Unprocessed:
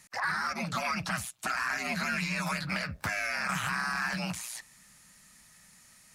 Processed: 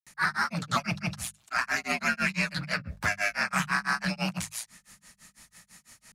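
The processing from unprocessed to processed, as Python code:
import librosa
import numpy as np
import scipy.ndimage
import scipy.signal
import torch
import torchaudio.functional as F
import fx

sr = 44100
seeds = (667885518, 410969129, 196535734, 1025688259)

y = fx.granulator(x, sr, seeds[0], grain_ms=166.0, per_s=6.0, spray_ms=100.0, spread_st=0)
y = fx.hum_notches(y, sr, base_hz=50, count=4)
y = F.gain(torch.from_numpy(y), 7.5).numpy()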